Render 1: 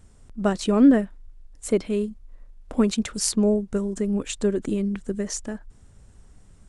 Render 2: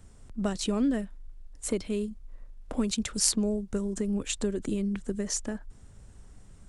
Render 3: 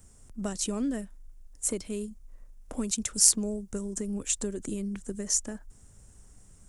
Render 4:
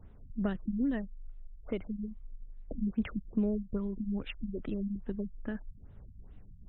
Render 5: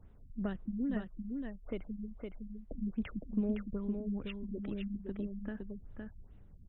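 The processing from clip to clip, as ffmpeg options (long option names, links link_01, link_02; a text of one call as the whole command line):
ffmpeg -i in.wav -filter_complex "[0:a]acrossover=split=130|3000[link_01][link_02][link_03];[link_02]acompressor=threshold=-30dB:ratio=3[link_04];[link_01][link_04][link_03]amix=inputs=3:normalize=0" out.wav
ffmpeg -i in.wav -af "aexciter=amount=4.2:drive=3:freq=5600,volume=-4dB" out.wav
ffmpeg -i in.wav -af "aphaser=in_gain=1:out_gain=1:delay=1.7:decay=0.34:speed=0.33:type=triangular,afftfilt=real='re*lt(b*sr/1024,210*pow(4100/210,0.5+0.5*sin(2*PI*2.4*pts/sr)))':imag='im*lt(b*sr/1024,210*pow(4100/210,0.5+0.5*sin(2*PI*2.4*pts/sr)))':win_size=1024:overlap=0.75" out.wav
ffmpeg -i in.wav -af "aecho=1:1:512:0.596,volume=-4.5dB" out.wav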